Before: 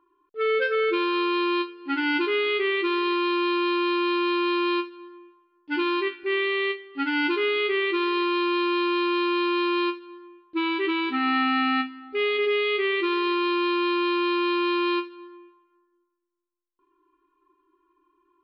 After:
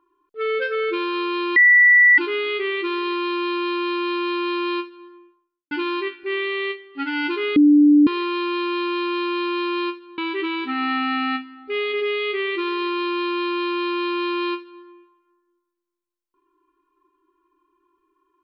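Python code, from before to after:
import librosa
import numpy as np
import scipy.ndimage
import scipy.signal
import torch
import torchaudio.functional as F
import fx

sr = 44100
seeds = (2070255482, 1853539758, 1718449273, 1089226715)

y = fx.studio_fade_out(x, sr, start_s=5.08, length_s=0.63)
y = fx.edit(y, sr, fx.bleep(start_s=1.56, length_s=0.62, hz=1960.0, db=-9.0),
    fx.bleep(start_s=7.56, length_s=0.51, hz=294.0, db=-9.0),
    fx.cut(start_s=10.18, length_s=0.45), tone=tone)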